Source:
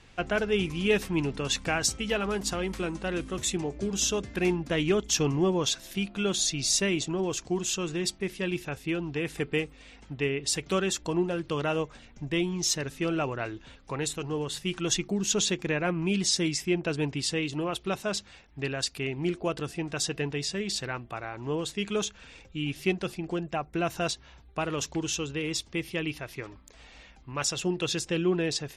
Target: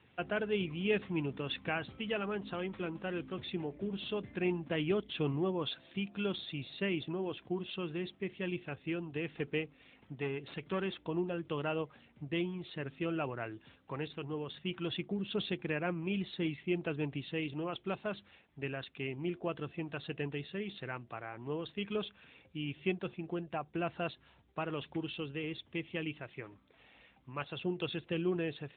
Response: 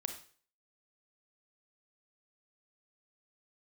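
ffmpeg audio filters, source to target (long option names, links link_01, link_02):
-filter_complex "[0:a]asettb=1/sr,asplit=3[link_01][link_02][link_03];[link_01]atrim=end=9.644[link_04];[link_02]atrim=start=9.64:end=11.02,asetpts=PTS-STARTPTS,afade=type=in:duration=0.004:curve=qsin,afade=type=out:start_time=1.376:duration=0.004:curve=qsin,aeval=exprs='clip(val(0),-1,0.0422)':channel_layout=same[link_05];[link_03]atrim=start=11.016[link_06];[link_04][link_05]acrossfade=duration=0.004:curve1=hsin:curve2=qsin[link_07];[link_07][link_06]acrossfade=duration=0.004:curve1=qsin:curve2=hsin,volume=-6.5dB" -ar 8000 -c:a libopencore_amrnb -b:a 12200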